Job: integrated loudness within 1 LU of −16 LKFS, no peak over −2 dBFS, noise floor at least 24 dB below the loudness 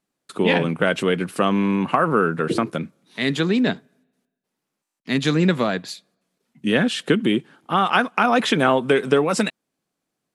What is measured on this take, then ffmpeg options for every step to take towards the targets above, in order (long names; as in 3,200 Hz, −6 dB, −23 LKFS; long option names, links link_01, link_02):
integrated loudness −20.5 LKFS; sample peak −3.5 dBFS; target loudness −16.0 LKFS
→ -af "volume=4.5dB,alimiter=limit=-2dB:level=0:latency=1"